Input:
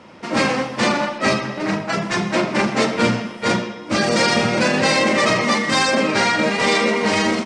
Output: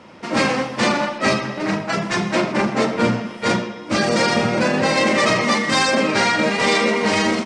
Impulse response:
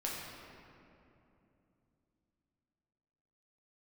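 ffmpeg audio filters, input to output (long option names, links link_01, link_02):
-filter_complex "[0:a]asplit=3[link_01][link_02][link_03];[link_01]afade=type=out:start_time=2.51:duration=0.02[link_04];[link_02]adynamicequalizer=threshold=0.0282:dfrequency=1800:dqfactor=0.7:tfrequency=1800:tqfactor=0.7:attack=5:release=100:ratio=0.375:range=3:mode=cutabove:tftype=highshelf,afade=type=in:start_time=2.51:duration=0.02,afade=type=out:start_time=4.96:duration=0.02[link_05];[link_03]afade=type=in:start_time=4.96:duration=0.02[link_06];[link_04][link_05][link_06]amix=inputs=3:normalize=0"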